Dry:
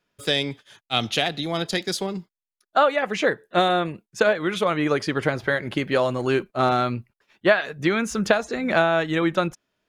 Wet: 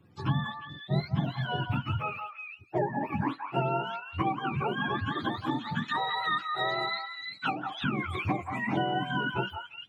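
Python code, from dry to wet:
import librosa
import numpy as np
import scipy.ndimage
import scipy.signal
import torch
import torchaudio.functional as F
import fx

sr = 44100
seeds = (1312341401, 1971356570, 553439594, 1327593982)

y = fx.octave_mirror(x, sr, pivot_hz=700.0)
y = fx.weighting(y, sr, curve='ITU-R 468', at=(5.88, 7.84))
y = fx.echo_stepped(y, sr, ms=174, hz=1100.0, octaves=1.4, feedback_pct=70, wet_db=-5.0)
y = fx.band_squash(y, sr, depth_pct=70)
y = F.gain(torch.from_numpy(y), -8.0).numpy()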